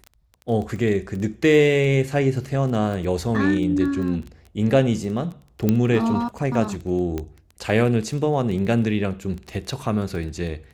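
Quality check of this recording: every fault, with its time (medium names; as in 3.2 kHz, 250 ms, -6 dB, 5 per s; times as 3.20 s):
crackle 11 per s -28 dBFS
5.69 s: pop -7 dBFS
7.18 s: pop -15 dBFS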